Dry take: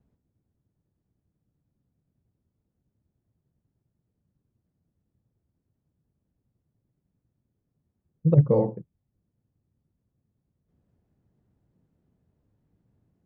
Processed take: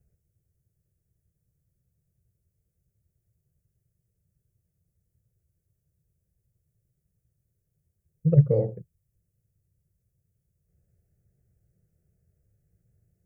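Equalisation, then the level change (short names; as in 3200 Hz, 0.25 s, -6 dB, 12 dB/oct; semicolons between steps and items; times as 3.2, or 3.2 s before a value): tone controls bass +5 dB, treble +11 dB; bell 990 Hz -9 dB 1 oct; fixed phaser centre 960 Hz, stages 6; 0.0 dB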